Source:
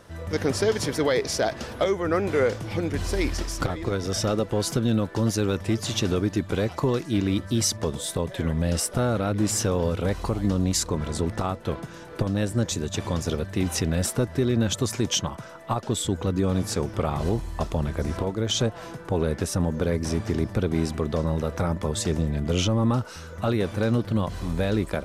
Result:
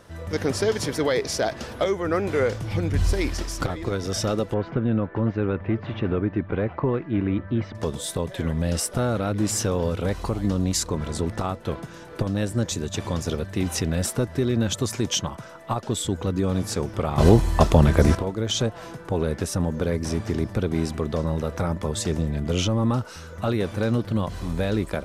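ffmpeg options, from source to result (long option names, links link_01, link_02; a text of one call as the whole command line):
ffmpeg -i in.wav -filter_complex "[0:a]asettb=1/sr,asplit=3[link_01][link_02][link_03];[link_01]atrim=end=2.254[link_04];[link_02]atrim=start=2.25:end=3.13,asetpts=PTS-STARTPTS,afade=type=in:duration=0.004:curve=qsin,afade=type=out:start_time=0.876:duration=0.004:curve=qsin,asubboost=boost=9:cutoff=180[link_05];[link_03]atrim=start=3.126[link_06];[link_04][link_05]acrossfade=duration=0.004:curve1=hsin:curve2=qsin[link_07];[link_07][link_06]acrossfade=duration=0.004:curve1=qsin:curve2=hsin,asettb=1/sr,asplit=3[link_08][link_09][link_10];[link_08]atrim=end=4.544[link_11];[link_09]atrim=start=4.54:end=7.75,asetpts=PTS-STARTPTS,afade=type=in:duration=0.004:curve=qsin,afade=type=out:start_time=3.206:duration=0.004:curve=qsin,lowpass=frequency=2300:width=0.5412,lowpass=frequency=2300:width=1.3066[link_12];[link_10]atrim=start=7.746[link_13];[link_11][link_12]acrossfade=duration=0.004:curve1=hsin:curve2=qsin[link_14];[link_14][link_13]acrossfade=duration=0.004:curve1=qsin:curve2=hsin,asplit=3[link_15][link_16][link_17];[link_15]atrim=end=17.182[link_18];[link_16]atrim=start=17.178:end=18.152,asetpts=PTS-STARTPTS,volume=10.5dB[link_19];[link_17]atrim=start=18.148[link_20];[link_18][link_19]acrossfade=duration=0.004:curve1=hsin:curve2=hsin[link_21];[link_21][link_20]acrossfade=duration=0.004:curve1=hsin:curve2=hsin" out.wav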